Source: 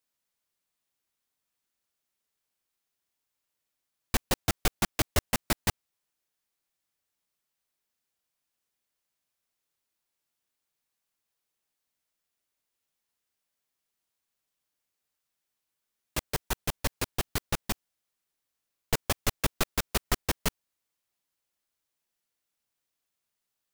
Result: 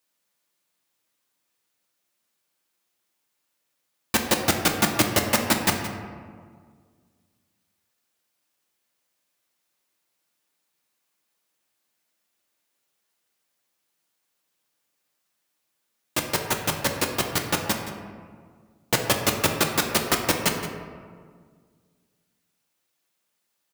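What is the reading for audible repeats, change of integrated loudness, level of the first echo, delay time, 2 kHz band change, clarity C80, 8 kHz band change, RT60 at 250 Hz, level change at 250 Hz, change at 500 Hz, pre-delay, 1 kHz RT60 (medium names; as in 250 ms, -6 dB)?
1, +7.5 dB, -14.0 dB, 171 ms, +8.5 dB, 6.0 dB, +8.0 dB, 2.2 s, +9.0 dB, +9.0 dB, 3 ms, 1.7 s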